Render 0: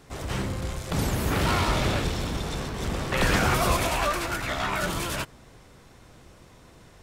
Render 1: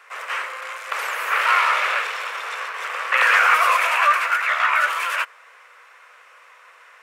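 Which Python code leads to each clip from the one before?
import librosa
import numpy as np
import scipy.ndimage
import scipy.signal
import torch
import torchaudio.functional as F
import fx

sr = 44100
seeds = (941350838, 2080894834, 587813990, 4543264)

y = scipy.signal.sosfilt(scipy.signal.ellip(4, 1.0, 60, 490.0, 'highpass', fs=sr, output='sos'), x)
y = fx.band_shelf(y, sr, hz=1700.0, db=14.0, octaves=1.7)
y = F.gain(torch.from_numpy(y), -1.5).numpy()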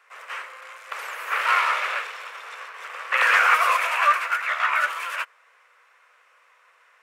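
y = fx.upward_expand(x, sr, threshold_db=-30.0, expansion=1.5)
y = F.gain(torch.from_numpy(y), -1.0).numpy()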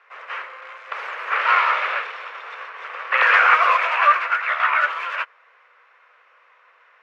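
y = fx.air_absorb(x, sr, metres=230.0)
y = F.gain(torch.from_numpy(y), 5.0).numpy()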